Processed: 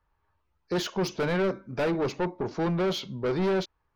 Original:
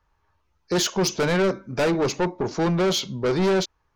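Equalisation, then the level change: treble shelf 5 kHz -5.5 dB; peaking EQ 7.1 kHz -7.5 dB 0.87 oct; -5.0 dB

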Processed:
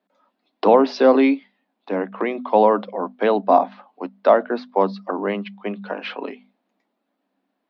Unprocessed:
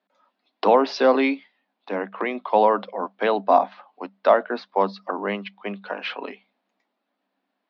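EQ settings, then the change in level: bass shelf 480 Hz +10.5 dB; hum notches 50/100/150/200/250 Hz; -1.5 dB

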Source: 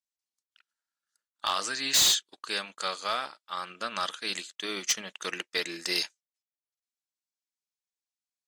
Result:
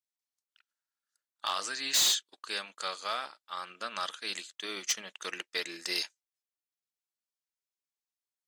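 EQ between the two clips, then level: bass shelf 180 Hz -10.5 dB; -3.5 dB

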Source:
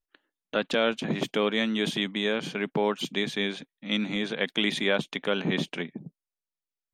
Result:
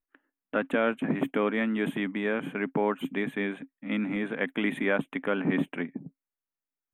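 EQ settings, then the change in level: Butterworth band-stop 5 kHz, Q 0.6; peaking EQ 270 Hz +11 dB 0.27 oct; peaking EQ 1.7 kHz +4 dB 2 oct; -2.5 dB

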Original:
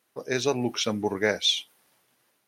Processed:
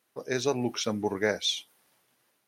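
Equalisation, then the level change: dynamic bell 2.8 kHz, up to -6 dB, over -38 dBFS, Q 1.7; -2.0 dB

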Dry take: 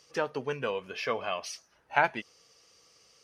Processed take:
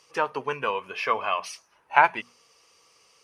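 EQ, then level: hum notches 60/120/180/240 Hz; dynamic bell 1.3 kHz, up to +4 dB, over -44 dBFS, Q 1.1; fifteen-band graphic EQ 400 Hz +3 dB, 1 kHz +11 dB, 2.5 kHz +7 dB, 10 kHz +8 dB; -2.0 dB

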